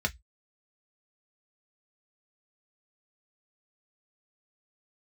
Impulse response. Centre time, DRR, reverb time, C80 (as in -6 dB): 5 ms, 3.0 dB, 0.10 s, 39.5 dB